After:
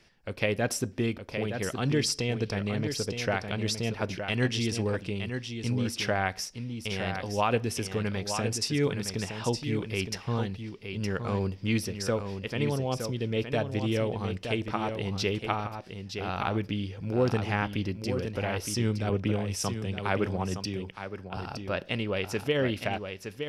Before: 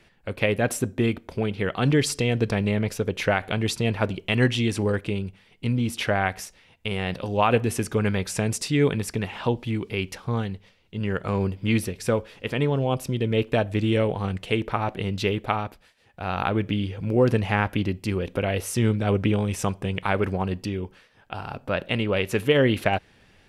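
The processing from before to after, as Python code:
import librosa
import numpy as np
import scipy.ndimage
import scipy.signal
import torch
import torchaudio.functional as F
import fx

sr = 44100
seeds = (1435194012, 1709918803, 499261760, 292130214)

y = fx.peak_eq(x, sr, hz=5300.0, db=12.5, octaves=0.43)
y = fx.rider(y, sr, range_db=3, speed_s=2.0)
y = y + 10.0 ** (-7.5 / 20.0) * np.pad(y, (int(916 * sr / 1000.0), 0))[:len(y)]
y = fx.band_widen(y, sr, depth_pct=40, at=(19.09, 21.37))
y = F.gain(torch.from_numpy(y), -6.5).numpy()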